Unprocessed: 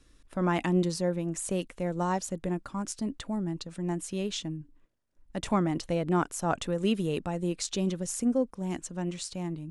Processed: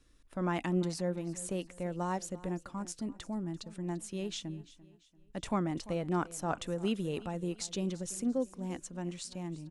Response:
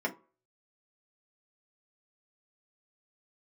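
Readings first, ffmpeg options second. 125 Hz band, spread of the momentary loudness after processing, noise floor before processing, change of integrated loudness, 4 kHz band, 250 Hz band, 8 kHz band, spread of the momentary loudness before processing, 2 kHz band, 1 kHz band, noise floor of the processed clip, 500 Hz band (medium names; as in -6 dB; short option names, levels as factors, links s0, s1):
-5.5 dB, 8 LU, -61 dBFS, -5.5 dB, -5.5 dB, -5.5 dB, -5.5 dB, 8 LU, -5.5 dB, -5.5 dB, -63 dBFS, -5.5 dB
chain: -af "aecho=1:1:342|684|1026:0.119|0.0464|0.0181,volume=0.531"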